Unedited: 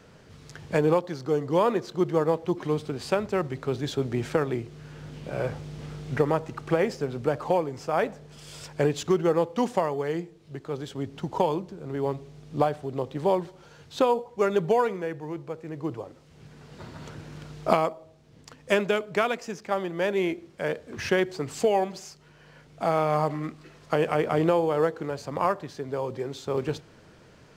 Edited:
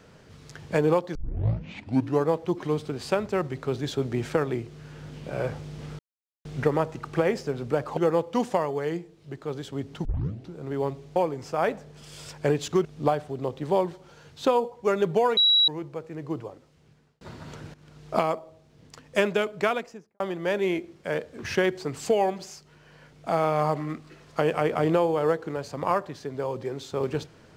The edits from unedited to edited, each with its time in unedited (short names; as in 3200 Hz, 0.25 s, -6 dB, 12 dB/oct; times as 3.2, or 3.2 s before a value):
1.15 tape start 1.13 s
5.99 insert silence 0.46 s
7.51–9.2 move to 12.39
11.28 tape start 0.50 s
14.91–15.22 bleep 3890 Hz -16 dBFS
15.84–16.75 fade out
17.28–17.93 fade in, from -16.5 dB
19.19–19.74 studio fade out